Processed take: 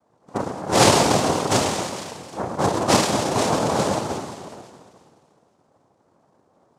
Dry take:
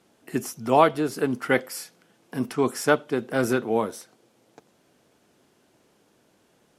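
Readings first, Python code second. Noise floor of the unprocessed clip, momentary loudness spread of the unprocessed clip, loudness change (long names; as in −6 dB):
−64 dBFS, 17 LU, +4.0 dB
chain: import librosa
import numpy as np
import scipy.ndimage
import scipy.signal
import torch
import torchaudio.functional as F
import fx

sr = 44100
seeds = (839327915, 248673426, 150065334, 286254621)

y = fx.wiener(x, sr, points=41)
y = fx.rev_schroeder(y, sr, rt60_s=2.1, comb_ms=26, drr_db=-2.5)
y = fx.noise_vocoder(y, sr, seeds[0], bands=2)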